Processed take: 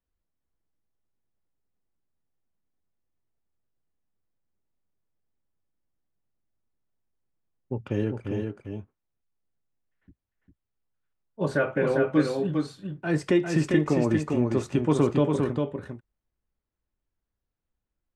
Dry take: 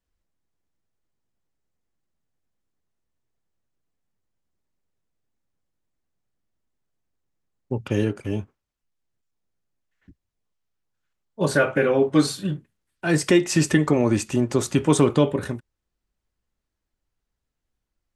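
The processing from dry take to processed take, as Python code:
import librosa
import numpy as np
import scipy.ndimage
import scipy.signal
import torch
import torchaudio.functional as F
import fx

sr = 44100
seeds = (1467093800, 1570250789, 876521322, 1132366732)

p1 = fx.lowpass(x, sr, hz=1800.0, slope=6)
p2 = p1 + fx.echo_single(p1, sr, ms=401, db=-4.5, dry=0)
y = p2 * 10.0 ** (-4.5 / 20.0)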